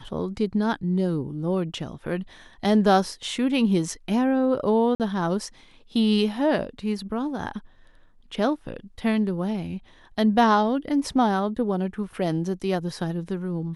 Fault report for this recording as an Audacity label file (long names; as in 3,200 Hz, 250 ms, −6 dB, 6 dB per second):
4.950000	5.000000	drop-out 48 ms